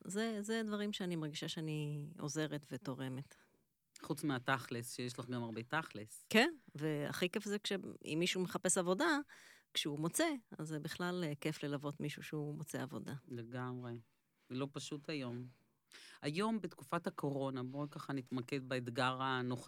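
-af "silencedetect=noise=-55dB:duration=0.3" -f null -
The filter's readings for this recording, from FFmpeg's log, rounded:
silence_start: 3.33
silence_end: 3.96 | silence_duration: 0.63
silence_start: 14.01
silence_end: 14.50 | silence_duration: 0.49
silence_start: 15.50
silence_end: 15.92 | silence_duration: 0.41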